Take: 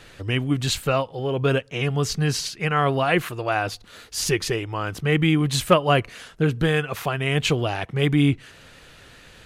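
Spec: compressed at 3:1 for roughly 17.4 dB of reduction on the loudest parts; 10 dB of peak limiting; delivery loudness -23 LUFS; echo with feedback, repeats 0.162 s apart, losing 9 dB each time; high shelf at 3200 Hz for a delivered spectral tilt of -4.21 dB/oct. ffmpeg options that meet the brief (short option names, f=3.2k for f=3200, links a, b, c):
-af "highshelf=f=3.2k:g=5,acompressor=threshold=-35dB:ratio=3,alimiter=level_in=5.5dB:limit=-24dB:level=0:latency=1,volume=-5.5dB,aecho=1:1:162|324|486|648:0.355|0.124|0.0435|0.0152,volume=15.5dB"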